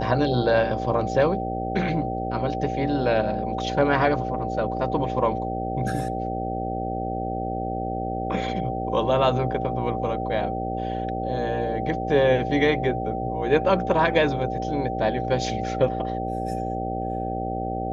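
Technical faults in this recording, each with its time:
buzz 60 Hz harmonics 11 -30 dBFS
whine 770 Hz -29 dBFS

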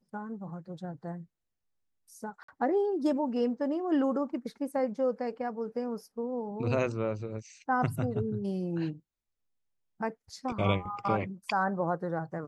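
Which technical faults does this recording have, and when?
2.43–2.48 s: dropout 54 ms

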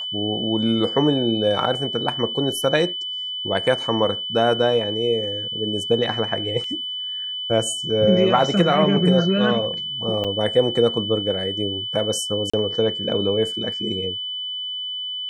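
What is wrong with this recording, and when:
whine 3 kHz -26 dBFS
6.64 s: dropout 2.8 ms
10.24–10.25 s: dropout 6 ms
12.50–12.54 s: dropout 35 ms

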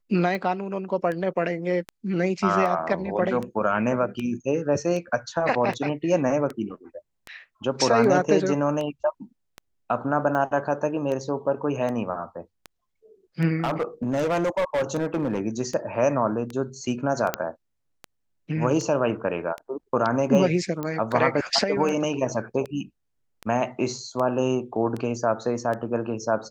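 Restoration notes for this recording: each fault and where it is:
tick 78 rpm -19 dBFS
13.63–15.41 s: clipped -20 dBFS
17.34 s: pop -7 dBFS
20.83 s: pop -17 dBFS

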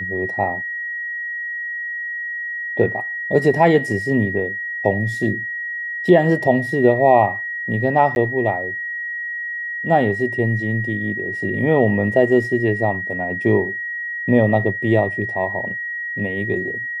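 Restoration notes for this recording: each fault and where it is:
whine 1.9 kHz -24 dBFS
8.15–8.16 s: dropout 11 ms

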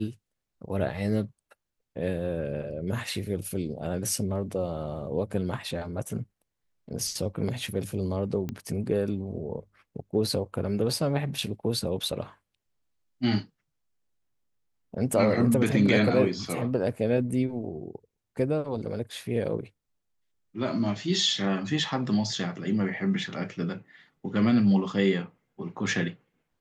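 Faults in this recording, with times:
8.49 s: pop -20 dBFS

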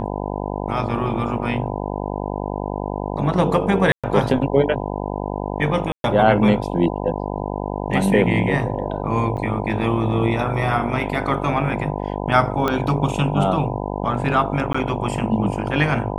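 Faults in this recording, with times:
buzz 50 Hz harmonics 20 -26 dBFS
3.92–4.04 s: dropout 116 ms
5.92–6.04 s: dropout 122 ms
9.37–9.38 s: dropout 7.9 ms
12.68 s: pop -8 dBFS
14.73–14.74 s: dropout 15 ms

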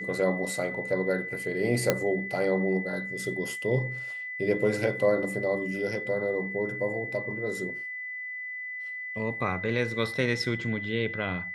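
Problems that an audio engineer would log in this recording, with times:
whine 2 kHz -34 dBFS
1.90 s: pop -7 dBFS

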